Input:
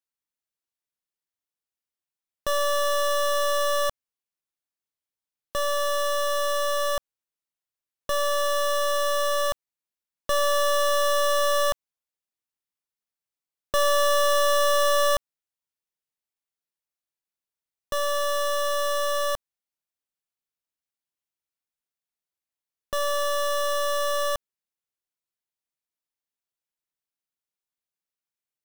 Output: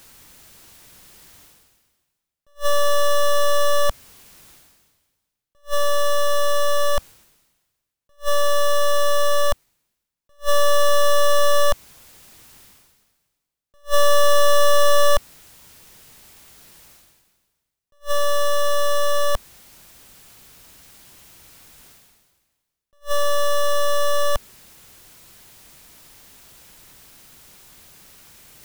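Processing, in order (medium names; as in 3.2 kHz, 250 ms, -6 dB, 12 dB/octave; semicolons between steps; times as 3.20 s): bass shelf 200 Hz +11 dB; reverse; upward compressor, threshold -20 dBFS; reverse; attacks held to a fixed rise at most 360 dB/s; trim +3 dB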